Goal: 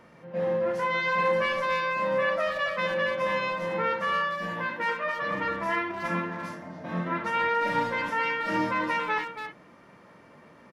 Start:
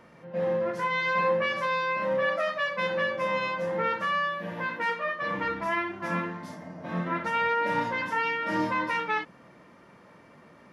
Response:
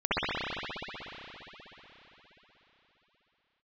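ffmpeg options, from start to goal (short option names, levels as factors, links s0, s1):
-filter_complex "[0:a]asplit=2[s0][s1];[s1]adelay=280,highpass=300,lowpass=3400,asoftclip=type=hard:threshold=0.0596,volume=0.447[s2];[s0][s2]amix=inputs=2:normalize=0"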